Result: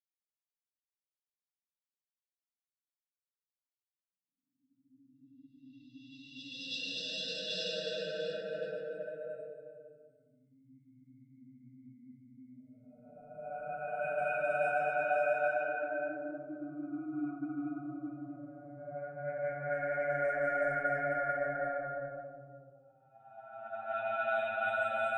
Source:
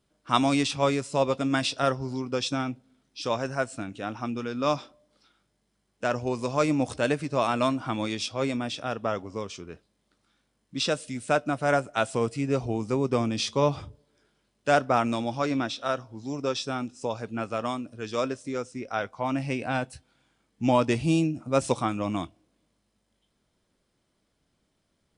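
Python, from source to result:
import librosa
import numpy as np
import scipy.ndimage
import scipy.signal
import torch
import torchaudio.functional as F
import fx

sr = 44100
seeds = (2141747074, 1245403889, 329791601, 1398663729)

y = fx.bin_expand(x, sr, power=3.0)
y = fx.dynamic_eq(y, sr, hz=290.0, q=2.6, threshold_db=-46.0, ratio=4.0, max_db=5)
y = fx.paulstretch(y, sr, seeds[0], factor=15.0, window_s=0.25, from_s=10.35)
y = fx.env_lowpass(y, sr, base_hz=430.0, full_db=-25.5)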